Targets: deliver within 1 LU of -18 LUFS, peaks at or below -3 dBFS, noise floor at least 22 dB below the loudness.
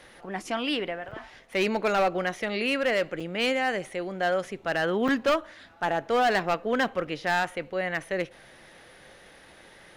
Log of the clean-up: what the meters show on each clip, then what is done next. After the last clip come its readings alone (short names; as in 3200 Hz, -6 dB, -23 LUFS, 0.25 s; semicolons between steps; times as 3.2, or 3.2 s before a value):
clipped 1.2%; flat tops at -18.5 dBFS; dropouts 4; longest dropout 5.0 ms; loudness -27.5 LUFS; peak -18.5 dBFS; loudness target -18.0 LUFS
-> clip repair -18.5 dBFS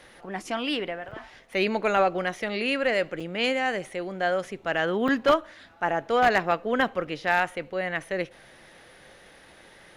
clipped 0.0%; dropouts 4; longest dropout 5.0 ms
-> interpolate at 1.11/3.2/5.08/7.07, 5 ms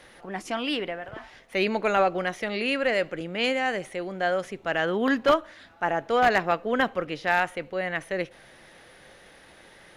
dropouts 0; loudness -26.5 LUFS; peak -9.5 dBFS; loudness target -18.0 LUFS
-> gain +8.5 dB; limiter -3 dBFS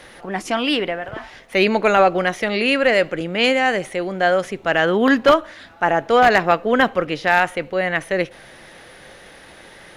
loudness -18.0 LUFS; peak -3.0 dBFS; noise floor -44 dBFS